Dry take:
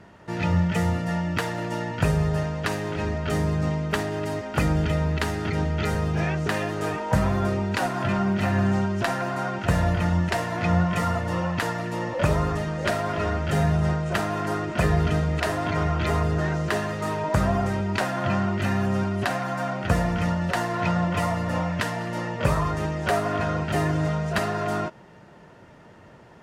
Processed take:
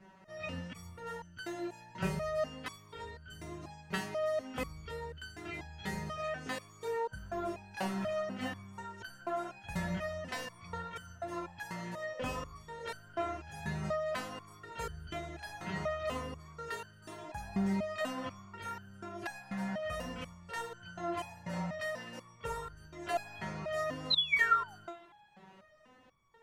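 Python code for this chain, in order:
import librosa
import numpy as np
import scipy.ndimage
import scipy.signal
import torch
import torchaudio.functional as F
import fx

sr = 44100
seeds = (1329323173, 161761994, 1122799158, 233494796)

y = fx.spec_paint(x, sr, seeds[0], shape='fall', start_s=24.1, length_s=0.66, low_hz=710.0, high_hz=4200.0, level_db=-15.0)
y = fx.rev_double_slope(y, sr, seeds[1], early_s=0.57, late_s=4.0, knee_db=-21, drr_db=18.5)
y = fx.resonator_held(y, sr, hz=4.1, low_hz=190.0, high_hz=1500.0)
y = F.gain(torch.from_numpy(y), 3.5).numpy()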